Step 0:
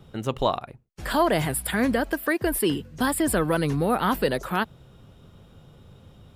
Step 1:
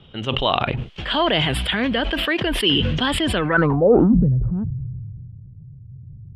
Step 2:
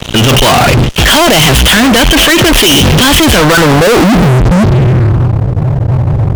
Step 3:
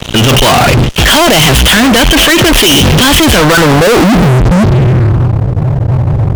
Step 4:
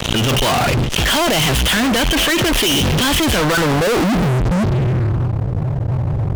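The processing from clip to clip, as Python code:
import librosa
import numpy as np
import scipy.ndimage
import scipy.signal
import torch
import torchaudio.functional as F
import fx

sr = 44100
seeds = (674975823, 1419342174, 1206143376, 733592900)

y1 = fx.filter_sweep_lowpass(x, sr, from_hz=3100.0, to_hz=120.0, start_s=3.37, end_s=4.29, q=6.0)
y1 = fx.sustainer(y1, sr, db_per_s=21.0)
y2 = fx.fuzz(y1, sr, gain_db=38.0, gate_db=-46.0)
y2 = fx.transient(y2, sr, attack_db=1, sustain_db=-5)
y2 = fx.leveller(y2, sr, passes=2)
y2 = F.gain(torch.from_numpy(y2), 6.5).numpy()
y3 = y2
y4 = fx.pre_swell(y3, sr, db_per_s=49.0)
y4 = F.gain(torch.from_numpy(y4), -9.5).numpy()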